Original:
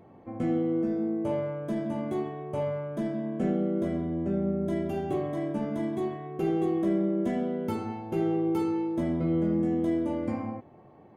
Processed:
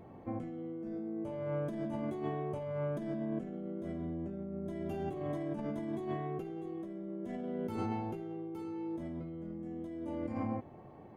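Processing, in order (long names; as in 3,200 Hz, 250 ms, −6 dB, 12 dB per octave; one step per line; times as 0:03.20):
low-shelf EQ 68 Hz +8 dB
compressor whose output falls as the input rises −34 dBFS, ratio −1
level −5 dB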